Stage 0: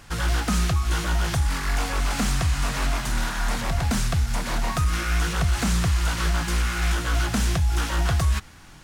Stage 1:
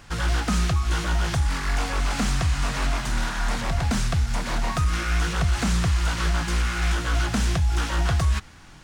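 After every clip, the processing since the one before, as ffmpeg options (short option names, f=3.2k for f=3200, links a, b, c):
-af "equalizer=f=13k:w=1.1:g=-9.5"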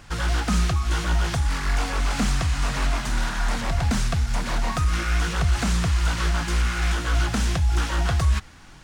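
-af "aphaser=in_gain=1:out_gain=1:delay=4.9:decay=0.2:speed=1.8:type=triangular"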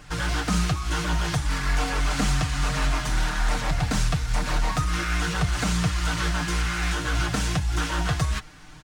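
-af "aecho=1:1:6.6:0.65,volume=-1dB"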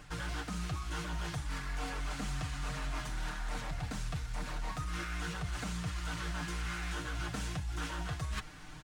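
-af "equalizer=f=5.4k:t=o:w=0.77:g=-2,areverse,acompressor=threshold=-32dB:ratio=6,areverse,volume=-3dB"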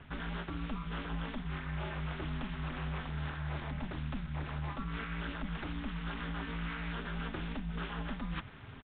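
-af "aeval=exprs='val(0)*sin(2*PI*110*n/s)':c=same,aresample=8000,aresample=44100,volume=2dB"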